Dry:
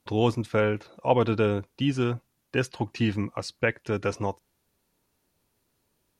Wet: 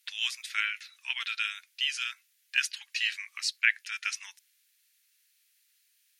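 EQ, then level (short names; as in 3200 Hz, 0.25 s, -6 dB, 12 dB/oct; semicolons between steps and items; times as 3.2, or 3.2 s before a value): steep high-pass 1800 Hz 36 dB/oct; +7.5 dB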